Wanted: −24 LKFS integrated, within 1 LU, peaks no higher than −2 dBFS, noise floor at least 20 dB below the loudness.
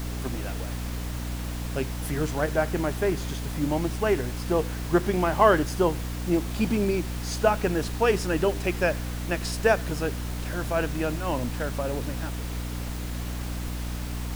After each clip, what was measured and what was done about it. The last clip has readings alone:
mains hum 60 Hz; hum harmonics up to 300 Hz; level of the hum −30 dBFS; background noise floor −32 dBFS; target noise floor −47 dBFS; integrated loudness −27.0 LKFS; sample peak −5.5 dBFS; target loudness −24.0 LKFS
→ mains-hum notches 60/120/180/240/300 Hz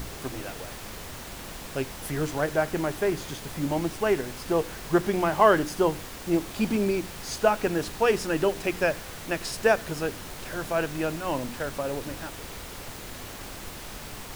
mains hum none found; background noise floor −40 dBFS; target noise floor −48 dBFS
→ noise reduction from a noise print 8 dB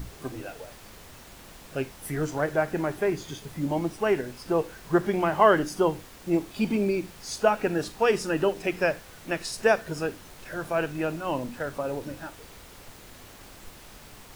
background noise floor −48 dBFS; integrated loudness −27.5 LKFS; sample peak −6.0 dBFS; target loudness −24.0 LKFS
→ level +3.5 dB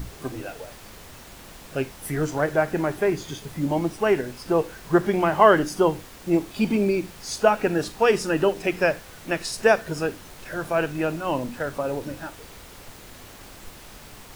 integrated loudness −24.0 LKFS; sample peak −2.5 dBFS; background noise floor −45 dBFS

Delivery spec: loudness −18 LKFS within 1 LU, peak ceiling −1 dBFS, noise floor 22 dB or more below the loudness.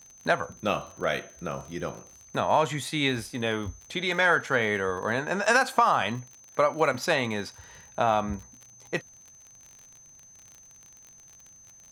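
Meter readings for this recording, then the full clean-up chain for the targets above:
crackle rate 39 per second; interfering tone 6,200 Hz; level of the tone −50 dBFS; integrated loudness −27.0 LKFS; sample peak −8.0 dBFS; target loudness −18.0 LKFS
→ click removal
notch filter 6,200 Hz, Q 30
level +9 dB
brickwall limiter −1 dBFS

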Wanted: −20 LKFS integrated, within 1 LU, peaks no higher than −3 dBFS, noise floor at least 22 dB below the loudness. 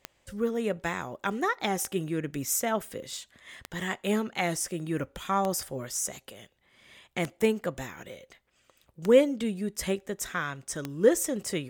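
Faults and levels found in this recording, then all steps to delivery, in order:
number of clicks 7; integrated loudness −29.5 LKFS; sample peak −8.0 dBFS; target loudness −20.0 LKFS
→ click removal
level +9.5 dB
brickwall limiter −3 dBFS

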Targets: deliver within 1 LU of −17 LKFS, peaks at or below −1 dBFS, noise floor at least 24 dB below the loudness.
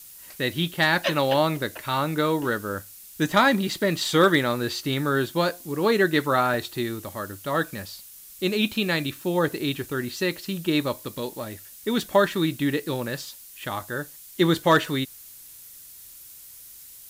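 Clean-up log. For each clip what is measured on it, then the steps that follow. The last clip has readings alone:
number of dropouts 1; longest dropout 1.5 ms; background noise floor −46 dBFS; target noise floor −49 dBFS; integrated loudness −24.5 LKFS; sample peak −7.5 dBFS; target loudness −17.0 LKFS
→ repair the gap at 0:06.54, 1.5 ms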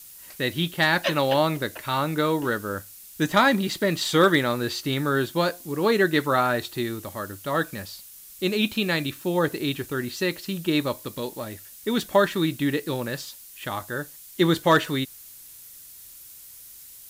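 number of dropouts 0; background noise floor −46 dBFS; target noise floor −49 dBFS
→ broadband denoise 6 dB, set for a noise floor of −46 dBFS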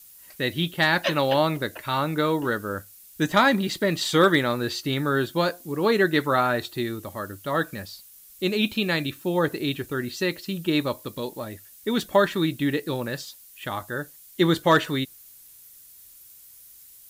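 background noise floor −50 dBFS; integrated loudness −24.5 LKFS; sample peak −7.5 dBFS; target loudness −17.0 LKFS
→ level +7.5 dB
brickwall limiter −1 dBFS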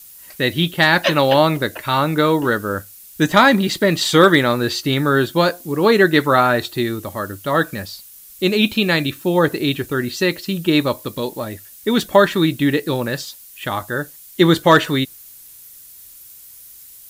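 integrated loudness −17.0 LKFS; sample peak −1.0 dBFS; background noise floor −42 dBFS

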